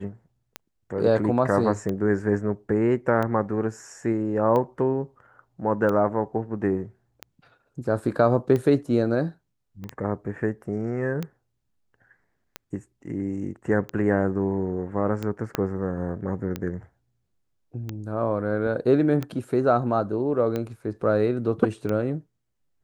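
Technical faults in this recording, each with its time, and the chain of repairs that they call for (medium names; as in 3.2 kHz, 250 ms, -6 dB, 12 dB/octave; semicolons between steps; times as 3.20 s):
tick 45 rpm -16 dBFS
9.84 s: pop -25 dBFS
15.55 s: pop -10 dBFS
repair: de-click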